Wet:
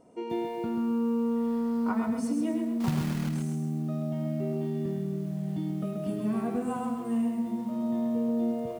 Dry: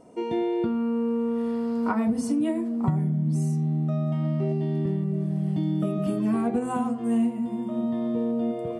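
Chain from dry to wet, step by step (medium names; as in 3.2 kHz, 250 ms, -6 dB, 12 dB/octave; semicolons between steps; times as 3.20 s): 2.80–3.29 s: companded quantiser 4-bit; on a send: feedback delay 104 ms, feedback 19%, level -11.5 dB; on the sum: bit-crushed delay 133 ms, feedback 35%, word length 8-bit, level -5.5 dB; trim -6 dB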